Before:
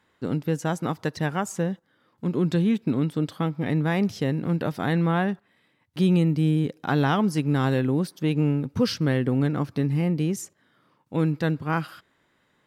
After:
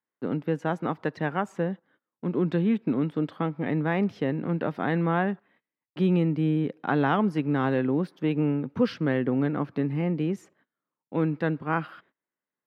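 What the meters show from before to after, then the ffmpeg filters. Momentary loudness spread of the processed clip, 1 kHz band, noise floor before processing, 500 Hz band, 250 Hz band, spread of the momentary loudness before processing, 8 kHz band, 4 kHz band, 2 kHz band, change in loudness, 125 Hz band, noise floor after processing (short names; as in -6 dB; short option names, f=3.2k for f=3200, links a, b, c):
7 LU, 0.0 dB, -68 dBFS, 0.0 dB, -2.0 dB, 7 LU, under -15 dB, -8.0 dB, -1.0 dB, -2.0 dB, -5.0 dB, under -85 dBFS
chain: -filter_complex "[0:a]agate=range=-25dB:threshold=-56dB:ratio=16:detection=peak,acrossover=split=160 3000:gain=0.178 1 0.0794[a][b][c];[a][b][c]amix=inputs=3:normalize=0"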